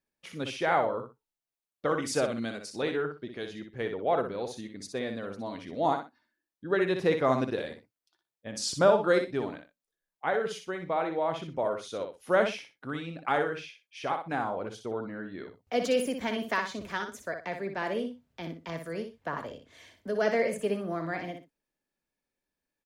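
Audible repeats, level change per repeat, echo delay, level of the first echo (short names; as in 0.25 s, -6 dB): 2, -13.0 dB, 61 ms, -7.0 dB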